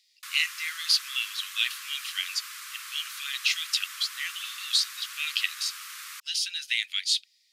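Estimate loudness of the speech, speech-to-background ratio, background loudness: −28.0 LKFS, 11.0 dB, −39.0 LKFS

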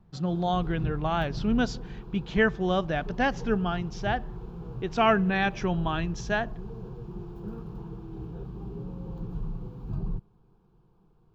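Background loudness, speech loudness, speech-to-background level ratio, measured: −39.0 LKFS, −28.0 LKFS, 11.0 dB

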